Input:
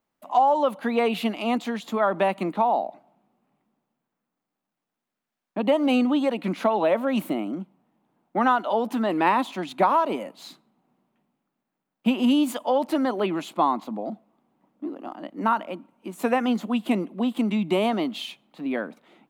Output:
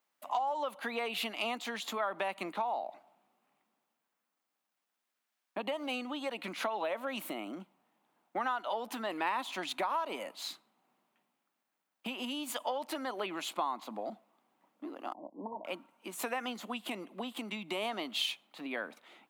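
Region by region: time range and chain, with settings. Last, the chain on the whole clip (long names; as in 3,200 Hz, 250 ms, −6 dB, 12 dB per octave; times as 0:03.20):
0:15.13–0:15.65: running median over 41 samples + linear-phase brick-wall low-pass 1,100 Hz + low-shelf EQ 330 Hz −3.5 dB
whole clip: downward compressor, threshold −28 dBFS; high-pass filter 1,300 Hz 6 dB per octave; level +3 dB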